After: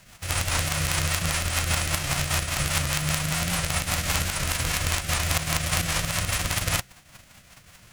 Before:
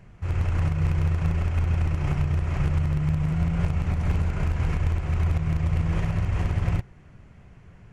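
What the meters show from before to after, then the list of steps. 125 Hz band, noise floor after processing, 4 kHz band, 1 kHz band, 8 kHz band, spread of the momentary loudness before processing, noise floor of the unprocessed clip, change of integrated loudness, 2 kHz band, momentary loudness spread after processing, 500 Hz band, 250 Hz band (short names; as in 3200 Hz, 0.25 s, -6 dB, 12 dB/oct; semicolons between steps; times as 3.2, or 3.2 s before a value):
-6.0 dB, -53 dBFS, +20.5 dB, +7.0 dB, n/a, 2 LU, -50 dBFS, +0.5 dB, +12.0 dB, 1 LU, +3.0 dB, -4.0 dB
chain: spectral whitening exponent 0.3; bell 410 Hz -14 dB 0.51 oct; rotary speaker horn 5 Hz; record warp 78 rpm, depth 100 cents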